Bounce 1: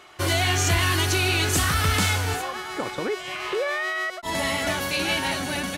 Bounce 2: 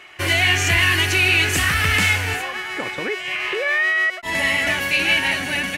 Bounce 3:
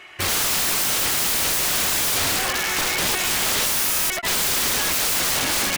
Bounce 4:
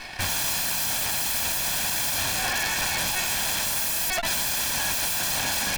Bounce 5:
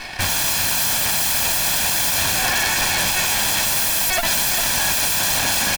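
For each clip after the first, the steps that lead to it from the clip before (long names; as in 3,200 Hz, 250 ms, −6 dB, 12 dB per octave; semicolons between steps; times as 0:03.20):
flat-topped bell 2,200 Hz +10 dB 1 octave
automatic gain control gain up to 11 dB; wrap-around overflow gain 16.5 dB
lower of the sound and its delayed copy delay 1.2 ms; brickwall limiter −25.5 dBFS, peak gain reduction 11.5 dB; level +7.5 dB
single-tap delay 403 ms −7.5 dB; level +6 dB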